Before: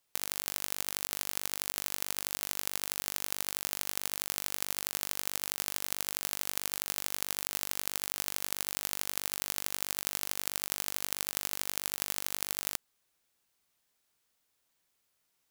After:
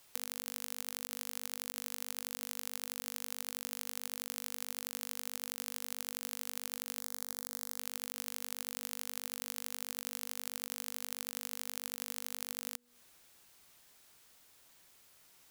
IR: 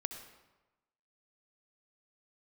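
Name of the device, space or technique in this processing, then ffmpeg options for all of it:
serial compression, leveller first: -filter_complex "[0:a]bandreject=frequency=242.3:width_type=h:width=4,bandreject=frequency=484.6:width_type=h:width=4,acompressor=threshold=-37dB:ratio=2.5,acompressor=threshold=-47dB:ratio=8,asettb=1/sr,asplit=3[link_01][link_02][link_03];[link_01]atrim=end=7.004[link_04];[link_02]atrim=start=7:end=7.79,asetpts=PTS-STARTPTS,afade=type=in:duration=0.004:curve=qsin,afade=type=out:start_time=0.786:duration=0.004:curve=qsin,equalizer=frequency=2700:width=3:gain=-14[link_05];[link_03]atrim=start=7.786[link_06];[link_04][link_05]acrossfade=duration=0.004:curve1=hsin:curve2=qsin[link_07];[link_07][link_06]acrossfade=duration=0.004:curve1=qsin:curve2=hsin,volume=14dB"

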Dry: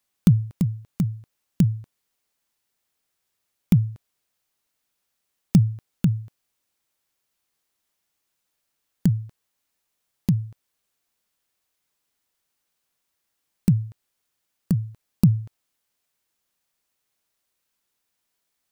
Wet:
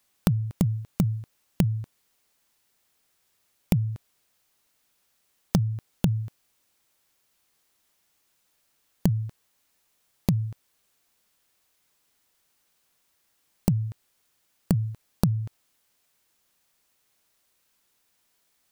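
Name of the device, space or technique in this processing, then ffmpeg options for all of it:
serial compression, peaks first: -af "acompressor=threshold=-23dB:ratio=4,acompressor=threshold=-28dB:ratio=2,volume=7dB"

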